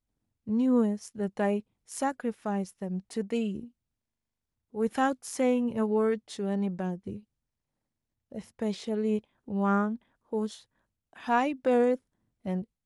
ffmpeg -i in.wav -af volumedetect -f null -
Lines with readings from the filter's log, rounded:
mean_volume: -30.7 dB
max_volume: -14.0 dB